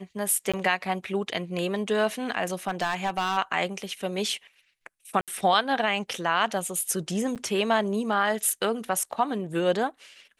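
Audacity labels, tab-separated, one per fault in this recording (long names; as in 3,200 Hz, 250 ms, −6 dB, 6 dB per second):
0.520000	0.540000	drop-out 16 ms
2.670000	3.380000	clipping −21 dBFS
5.210000	5.280000	drop-out 67 ms
7.350000	7.360000	drop-out 7.8 ms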